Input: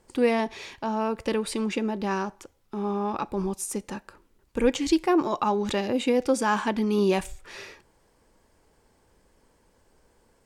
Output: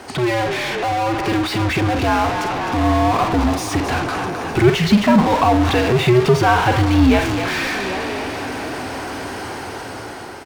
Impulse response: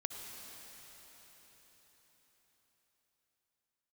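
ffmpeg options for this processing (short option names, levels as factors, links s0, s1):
-filter_complex "[0:a]afreqshift=-120,asplit=2[s0][s1];[s1]adelay=48,volume=0.251[s2];[s0][s2]amix=inputs=2:normalize=0,acrossover=split=5500[s3][s4];[s4]acompressor=threshold=0.00141:ratio=6[s5];[s3][s5]amix=inputs=2:normalize=0,bandreject=f=7500:w=5.2,dynaudnorm=f=720:g=5:m=5.01,asplit=5[s6][s7][s8][s9][s10];[s7]adelay=262,afreqshift=39,volume=0.119[s11];[s8]adelay=524,afreqshift=78,volume=0.0525[s12];[s9]adelay=786,afreqshift=117,volume=0.0229[s13];[s10]adelay=1048,afreqshift=156,volume=0.0101[s14];[s6][s11][s12][s13][s14]amix=inputs=5:normalize=0,asplit=2[s15][s16];[1:a]atrim=start_sample=2205[s17];[s16][s17]afir=irnorm=-1:irlink=0,volume=0.119[s18];[s15][s18]amix=inputs=2:normalize=0,asplit=2[s19][s20];[s20]highpass=f=720:p=1,volume=56.2,asoftclip=type=tanh:threshold=0.119[s21];[s19][s21]amix=inputs=2:normalize=0,lowpass=f=2700:p=1,volume=0.501,volume=1.58"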